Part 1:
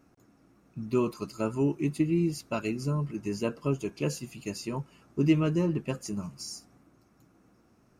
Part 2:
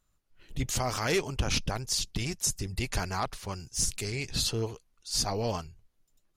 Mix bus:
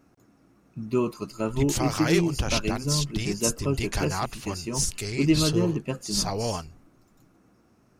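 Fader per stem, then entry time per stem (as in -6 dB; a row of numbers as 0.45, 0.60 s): +2.0, +2.0 dB; 0.00, 1.00 s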